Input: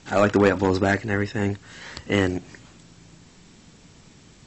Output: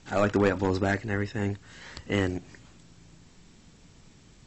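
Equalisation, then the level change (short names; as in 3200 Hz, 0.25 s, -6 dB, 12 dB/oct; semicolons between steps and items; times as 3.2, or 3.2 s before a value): low shelf 67 Hz +8.5 dB; -6.0 dB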